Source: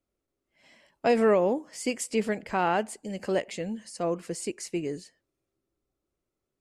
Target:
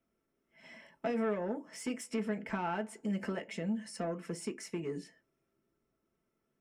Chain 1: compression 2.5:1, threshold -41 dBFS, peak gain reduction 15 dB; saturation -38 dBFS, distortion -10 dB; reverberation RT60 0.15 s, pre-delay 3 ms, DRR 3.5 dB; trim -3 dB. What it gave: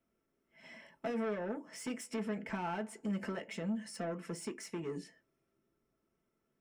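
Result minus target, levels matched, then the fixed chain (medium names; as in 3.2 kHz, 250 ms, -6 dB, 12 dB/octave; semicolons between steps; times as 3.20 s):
saturation: distortion +7 dB
compression 2.5:1, threshold -41 dBFS, peak gain reduction 15 dB; saturation -32 dBFS, distortion -17 dB; reverberation RT60 0.15 s, pre-delay 3 ms, DRR 3.5 dB; trim -3 dB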